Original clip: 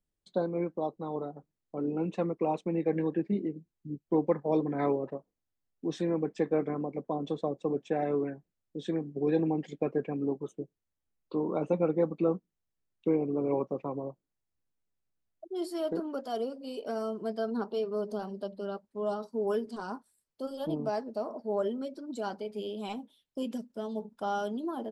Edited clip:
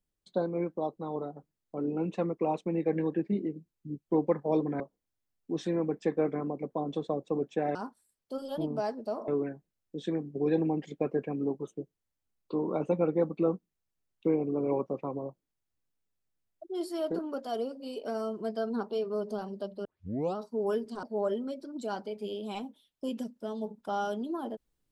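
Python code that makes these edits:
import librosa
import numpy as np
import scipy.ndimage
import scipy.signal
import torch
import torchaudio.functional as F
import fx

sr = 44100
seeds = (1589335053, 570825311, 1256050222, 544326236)

y = fx.edit(x, sr, fx.cut(start_s=4.8, length_s=0.34),
    fx.tape_start(start_s=18.66, length_s=0.51),
    fx.move(start_s=19.84, length_s=1.53, to_s=8.09), tone=tone)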